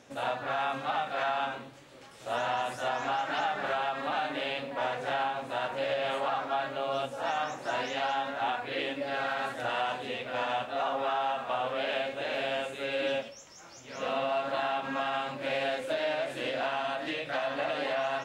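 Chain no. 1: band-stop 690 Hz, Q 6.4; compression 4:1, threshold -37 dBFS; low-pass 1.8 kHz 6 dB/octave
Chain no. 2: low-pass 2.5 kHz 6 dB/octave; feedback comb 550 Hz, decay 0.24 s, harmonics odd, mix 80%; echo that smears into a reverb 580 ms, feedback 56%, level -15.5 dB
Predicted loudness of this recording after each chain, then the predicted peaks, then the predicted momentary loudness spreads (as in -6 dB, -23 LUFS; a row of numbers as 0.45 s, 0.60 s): -41.0 LUFS, -43.0 LUFS; -27.5 dBFS, -26.5 dBFS; 2 LU, 7 LU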